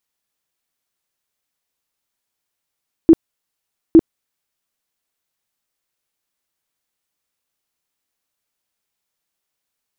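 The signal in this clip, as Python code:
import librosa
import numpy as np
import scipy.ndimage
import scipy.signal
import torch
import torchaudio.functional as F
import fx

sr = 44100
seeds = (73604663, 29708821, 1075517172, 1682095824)

y = fx.tone_burst(sr, hz=327.0, cycles=14, every_s=0.86, bursts=2, level_db=-3.0)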